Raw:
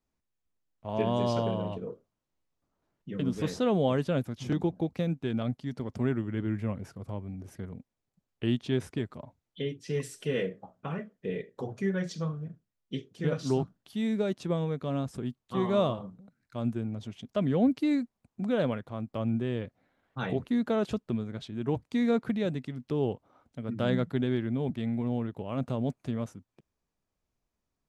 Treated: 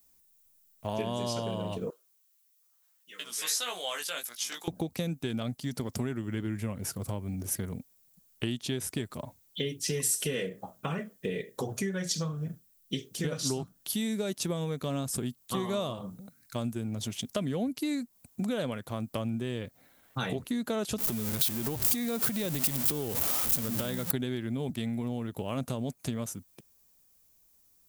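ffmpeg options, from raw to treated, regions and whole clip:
-filter_complex "[0:a]asettb=1/sr,asplit=3[s0][s1][s2];[s0]atrim=end=1.904[s3];[s1]atrim=start=1.9:end=4.68,asetpts=PTS-STARTPTS,afade=t=in:d=0.004:c=qsin,afade=t=out:st=2.776:d=0.004:c=qsin,highpass=1300,flanger=delay=16.5:depth=2:speed=1.6[s4];[s2]atrim=start=4.676[s5];[s3][s4]acrossfade=d=0.004:c1=hsin:c2=qsin[s6];[s6][s5]acrossfade=d=0.004:c1=qsin:c2=hsin,asettb=1/sr,asplit=3[s7][s8][s9];[s7]atrim=end=20.984[s10];[s8]atrim=start=20.98:end=24.11,asetpts=PTS-STARTPTS,afade=t=in:d=0.004:c=qsin,afade=t=out:st=3.126:d=0.004:c=qsin,aeval=exprs='val(0)+0.5*0.0141*sgn(val(0))':c=same,acompressor=threshold=0.0224:ratio=4:attack=3.2:release=140:knee=1:detection=peak[s11];[s9]atrim=start=24.106[s12];[s10][s11]acrossfade=d=0.004:c1=hsin:c2=qsin[s13];[s13][s12]acrossfade=d=0.004:c1=qsin:c2=hsin,aemphasis=mode=production:type=75kf,acompressor=threshold=0.0178:ratio=6,highshelf=f=6300:g=10,volume=1.88"

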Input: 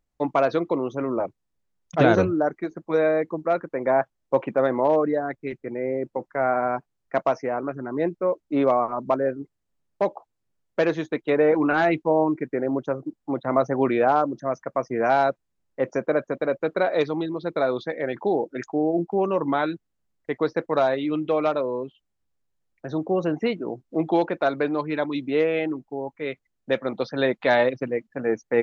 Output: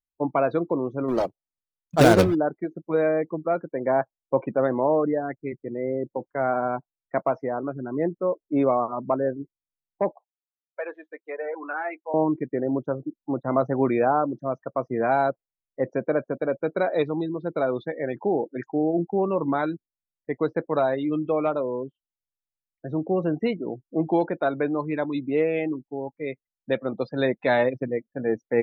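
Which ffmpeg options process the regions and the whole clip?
-filter_complex "[0:a]asettb=1/sr,asplit=3[s0][s1][s2];[s0]atrim=end=1.084[s3];[s1]atrim=start=1.08:end=2.35,asetpts=PTS-STARTPTS,afade=t=in:d=0.004:c=qsin,afade=t=out:st=1.266:d=0.004:c=qsin,equalizer=f=720:w=0.46:g=3.5,acrusher=bits=2:mode=log:mix=0:aa=0.000001[s4];[s2]atrim=start=2.346[s5];[s3][s4]acrossfade=d=0.004:c1=hsin:c2=qsin[s6];[s6][s5]acrossfade=d=0.004:c1=qsin:c2=hsin,asettb=1/sr,asplit=3[s7][s8][s9];[s7]atrim=end=10.114[s10];[s8]atrim=start=10.11:end=12.14,asetpts=PTS-STARTPTS,afade=t=in:d=0.004:c=qsin,afade=t=out:st=2.026:d=0.004:c=qsin,flanger=delay=1.2:depth=3:regen=-48:speed=1.5:shape=triangular,highpass=710,lowpass=2900[s11];[s9]atrim=start=12.136[s12];[s10][s11]acrossfade=d=0.004:c1=hsin:c2=qsin[s13];[s13][s12]acrossfade=d=0.004:c1=qsin:c2=hsin,afftdn=nr=24:nf=-34,lowshelf=f=230:g=6.5,volume=0.75"

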